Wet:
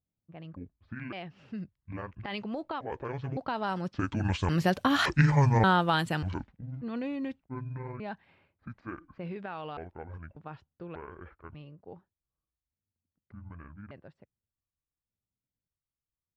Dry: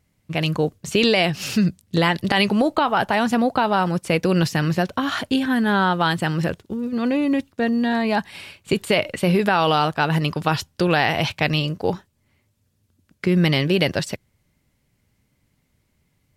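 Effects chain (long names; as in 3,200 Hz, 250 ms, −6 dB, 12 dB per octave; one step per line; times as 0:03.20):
pitch shifter gated in a rhythm −10 semitones, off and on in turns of 576 ms
source passing by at 0:05.21, 9 m/s, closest 3.4 metres
low-pass that shuts in the quiet parts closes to 1,000 Hz, open at −25.5 dBFS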